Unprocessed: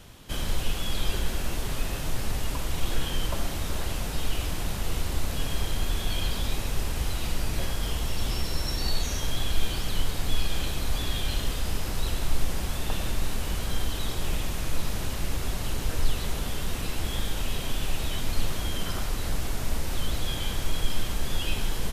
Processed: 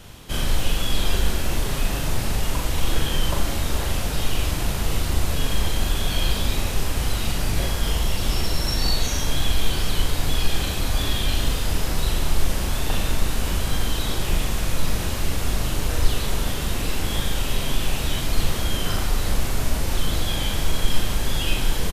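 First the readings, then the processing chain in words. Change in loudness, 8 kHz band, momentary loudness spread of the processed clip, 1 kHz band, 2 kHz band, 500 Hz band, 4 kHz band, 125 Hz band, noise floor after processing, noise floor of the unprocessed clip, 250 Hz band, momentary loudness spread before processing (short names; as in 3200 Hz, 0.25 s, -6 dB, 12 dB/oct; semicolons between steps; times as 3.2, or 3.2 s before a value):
+6.0 dB, +6.5 dB, 2 LU, +6.0 dB, +6.5 dB, +6.5 dB, +6.5 dB, +6.0 dB, -26 dBFS, -32 dBFS, +6.5 dB, 2 LU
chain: doubler 40 ms -3 dB; gain +4.5 dB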